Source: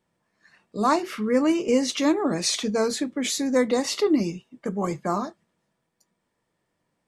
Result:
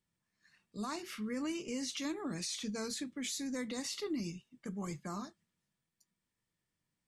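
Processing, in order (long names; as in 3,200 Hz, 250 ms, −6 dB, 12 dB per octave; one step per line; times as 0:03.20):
parametric band 610 Hz −14.5 dB 2.6 octaves
brickwall limiter −24.5 dBFS, peak gain reduction 11 dB
level −5.5 dB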